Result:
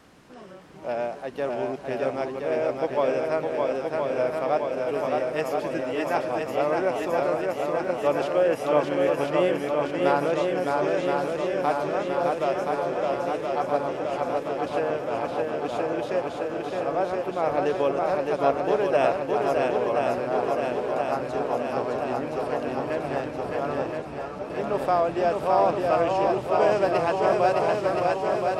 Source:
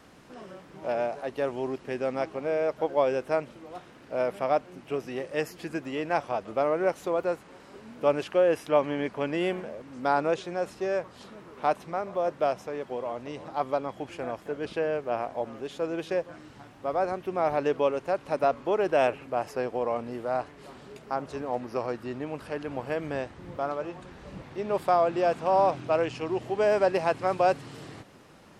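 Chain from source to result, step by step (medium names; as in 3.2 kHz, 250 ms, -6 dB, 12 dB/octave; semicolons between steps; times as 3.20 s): shuffle delay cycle 1022 ms, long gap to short 1.5:1, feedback 69%, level -3 dB; 24.02–24.50 s: three-phase chorus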